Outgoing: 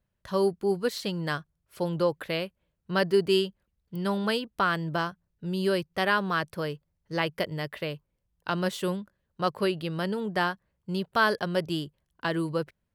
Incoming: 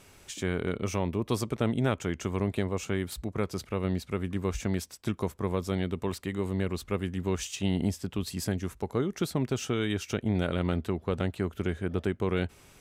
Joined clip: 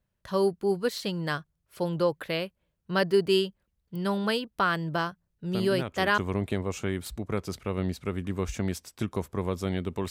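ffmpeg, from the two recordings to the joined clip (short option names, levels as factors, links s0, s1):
-filter_complex "[1:a]asplit=2[s0][s1];[0:a]apad=whole_dur=10.1,atrim=end=10.1,atrim=end=6.182[s2];[s1]atrim=start=2.238:end=6.16[s3];[s0]atrim=start=1.57:end=2.24,asetpts=PTS-STARTPTS,volume=0.447,afade=t=in:d=0.004:c=hsin,afade=t=out:st=0.666:d=0.004:c=hsin,adelay=5510[s4];[s2][s3]acrossfade=d=0.004:c1=hsin:c2=hsin[s5];[s5][s4]amix=inputs=2:normalize=0"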